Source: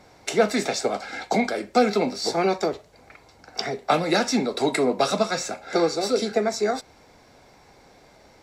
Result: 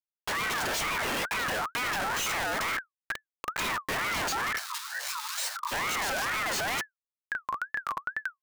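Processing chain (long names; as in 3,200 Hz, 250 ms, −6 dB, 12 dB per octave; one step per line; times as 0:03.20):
automatic gain control gain up to 14.5 dB
high-pass filter 66 Hz 24 dB per octave
comparator with hysteresis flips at −29 dBFS
time-frequency box erased 0:04.58–0:05.72, 210–2,200 Hz
ring modulator whose carrier an LFO sweeps 1,400 Hz, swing 25%, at 2.2 Hz
level −8.5 dB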